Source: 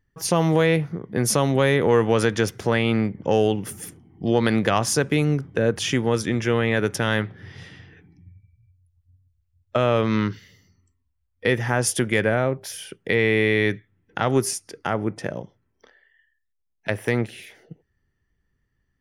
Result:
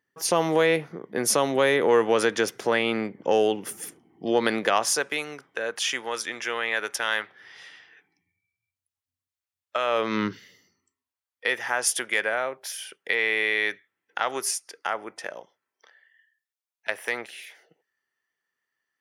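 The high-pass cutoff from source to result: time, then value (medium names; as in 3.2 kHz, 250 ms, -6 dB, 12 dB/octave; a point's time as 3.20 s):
4.47 s 340 Hz
5.26 s 840 Hz
9.84 s 840 Hz
10.26 s 210 Hz
11.46 s 770 Hz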